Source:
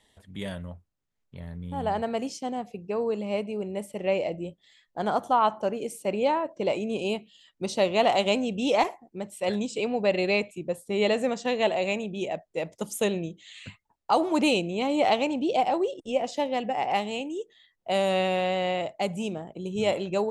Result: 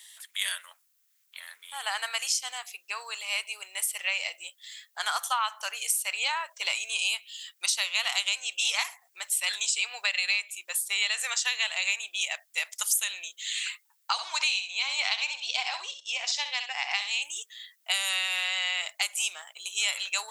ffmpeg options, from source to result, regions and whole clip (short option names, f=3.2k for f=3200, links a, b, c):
-filter_complex "[0:a]asettb=1/sr,asplit=3[a][b][c];[a]atrim=end=14.124[d];[b]atrim=start=14.12:end=17.22,asetpts=PTS-STARTPTS,afade=t=in:d=0.004:c=qsin,afade=t=out:st=3.096:d=0.004:c=qsin,highpass=300,equalizer=f=330:t=q:w=4:g=-9,equalizer=f=550:t=q:w=4:g=-5,equalizer=f=820:t=q:w=4:g=-3,equalizer=f=1.3k:t=q:w=4:g=-6,equalizer=f=1.9k:t=q:w=4:g=-4,equalizer=f=3k:t=q:w=4:g=-5,lowpass=f=5.9k:w=0.5412,lowpass=f=5.9k:w=1.3066,aecho=1:1:65|130:0.316|0.0474,atrim=end_sample=136710[e];[c]atrim=start=17.216[f];[d][e]acrossfade=d=0.004:c1=hsin:c2=qsin[g];[g][f]acrossfade=d=0.004:c1=qsin:c2=hsin,highpass=f=1.3k:w=0.5412,highpass=f=1.3k:w=1.3066,aemphasis=mode=production:type=75kf,acompressor=threshold=-33dB:ratio=6,volume=9dB"